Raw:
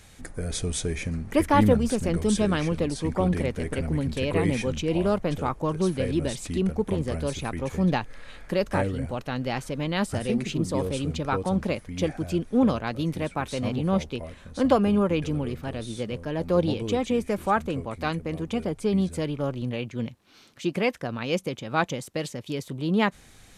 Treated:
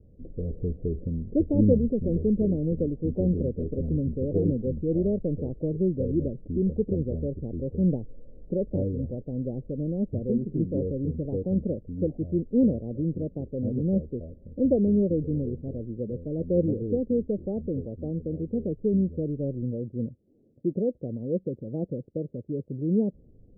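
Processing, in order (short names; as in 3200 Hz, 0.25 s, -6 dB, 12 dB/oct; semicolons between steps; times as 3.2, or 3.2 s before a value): steep low-pass 540 Hz 48 dB/oct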